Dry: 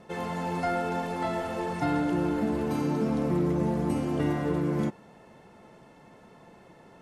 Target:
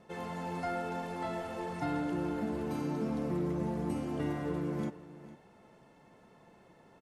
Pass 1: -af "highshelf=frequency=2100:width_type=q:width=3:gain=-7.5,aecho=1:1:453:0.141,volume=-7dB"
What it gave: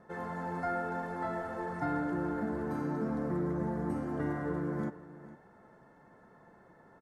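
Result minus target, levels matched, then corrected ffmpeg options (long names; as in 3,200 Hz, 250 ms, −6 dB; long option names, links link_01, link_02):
4,000 Hz band −11.5 dB
-af "aecho=1:1:453:0.141,volume=-7dB"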